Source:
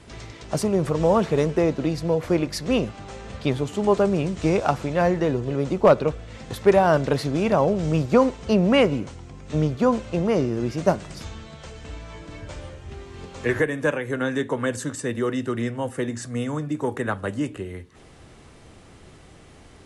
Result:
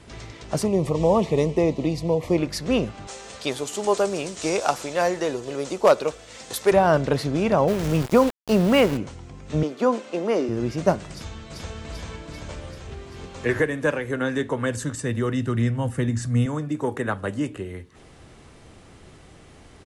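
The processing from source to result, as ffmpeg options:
ffmpeg -i in.wav -filter_complex "[0:a]asettb=1/sr,asplit=3[link_01][link_02][link_03];[link_01]atrim=end=0.664[link_04];[link_02]atrim=start=0.66:end=2.38,asetpts=PTS-STARTPTS,afade=type=in:duration=0.004:curve=qsin,afade=type=out:start_time=1.716:duration=0.004:curve=qsin,asuperstop=centerf=1500:order=4:qfactor=2[link_05];[link_03]atrim=start=2.376[link_06];[link_04][link_05]acrossfade=duration=0.004:curve1=hsin:curve2=qsin[link_07];[link_07][link_06]acrossfade=duration=0.004:curve1=qsin:curve2=hsin,asettb=1/sr,asplit=3[link_08][link_09][link_10];[link_08]atrim=end=3.074[link_11];[link_09]atrim=start=3.07:end=6.72,asetpts=PTS-STARTPTS,afade=type=in:duration=0.004:curve=qsin,afade=type=out:start_time=3.646:duration=0.004:curve=qsin,bass=frequency=250:gain=-15,treble=frequency=4000:gain=12[link_12];[link_10]atrim=start=6.716[link_13];[link_11][link_12]acrossfade=duration=0.004:curve1=hsin:curve2=qsin[link_14];[link_14][link_13]acrossfade=duration=0.004:curve1=qsin:curve2=hsin,asplit=3[link_15][link_16][link_17];[link_15]afade=type=out:start_time=7.67:duration=0.02[link_18];[link_16]aeval=exprs='val(0)*gte(abs(val(0)),0.0447)':channel_layout=same,afade=type=in:start_time=7.67:duration=0.02,afade=type=out:start_time=8.96:duration=0.02[link_19];[link_17]afade=type=in:start_time=8.96:duration=0.02[link_20];[link_18][link_19][link_20]amix=inputs=3:normalize=0,asettb=1/sr,asplit=3[link_21][link_22][link_23];[link_21]atrim=end=9.634[link_24];[link_22]atrim=start=9.63:end=10.49,asetpts=PTS-STARTPTS,afade=type=in:duration=0.004:curve=qsin,afade=type=out:start_time=0.856:duration=0.004:curve=qsin,highpass=frequency=250:width=0.5412,highpass=frequency=250:width=1.3066[link_25];[link_23]atrim=start=10.486[link_26];[link_24][link_25]acrossfade=duration=0.004:curve1=hsin:curve2=qsin[link_27];[link_27][link_26]acrossfade=duration=0.004:curve1=qsin:curve2=hsin,asplit=2[link_28][link_29];[link_29]afade=type=in:start_time=11.11:duration=0.01,afade=type=out:start_time=11.77:duration=0.01,aecho=0:1:390|780|1170|1560|1950|2340|2730|3120|3510|3900|4290|4680:0.944061|0.660843|0.46259|0.323813|0.226669|0.158668|0.111068|0.0777475|0.0544232|0.0380963|0.0266674|0.0186672[link_30];[link_28][link_30]amix=inputs=2:normalize=0,asettb=1/sr,asplit=3[link_31][link_32][link_33];[link_31]atrim=end=14.334[link_34];[link_32]atrim=start=14.33:end=16.46,asetpts=PTS-STARTPTS,afade=type=in:duration=0.004:curve=qsin,afade=type=out:start_time=2.126:duration=0.004:curve=qsin,asubboost=boost=8.5:cutoff=180[link_35];[link_33]atrim=start=16.456[link_36];[link_34][link_35]acrossfade=duration=0.004:curve1=hsin:curve2=qsin[link_37];[link_37][link_36]acrossfade=duration=0.004:curve1=qsin:curve2=hsin" out.wav

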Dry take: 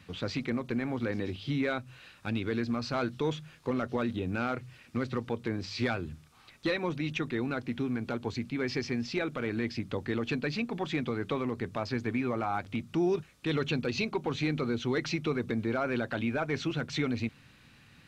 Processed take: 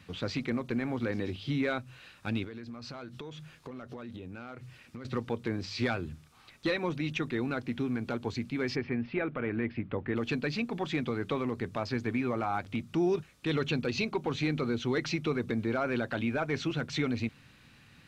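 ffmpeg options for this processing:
ffmpeg -i in.wav -filter_complex "[0:a]asettb=1/sr,asplit=3[link_01][link_02][link_03];[link_01]atrim=end=2.444[link_04];[link_02]atrim=start=2.44:end=5.05,asetpts=PTS-STARTPTS,afade=type=in:duration=0.004:curve=qsin,afade=type=out:start_time=2.606:duration=0.004:curve=qsin,acompressor=threshold=-39dB:ratio=8:attack=3.2:release=140:knee=1:detection=peak[link_05];[link_03]atrim=start=5.046[link_06];[link_04][link_05]acrossfade=duration=0.004:curve1=hsin:curve2=qsin[link_07];[link_07][link_06]acrossfade=duration=0.004:curve1=qsin:curve2=hsin,asplit=3[link_08][link_09][link_10];[link_08]afade=type=out:start_time=8.75:duration=0.02[link_11];[link_09]lowpass=frequency=2600:width=0.5412,lowpass=frequency=2600:width=1.3066,afade=type=in:start_time=8.75:duration=0.02,afade=type=out:start_time=10.15:duration=0.02[link_12];[link_10]afade=type=in:start_time=10.15:duration=0.02[link_13];[link_11][link_12][link_13]amix=inputs=3:normalize=0" out.wav

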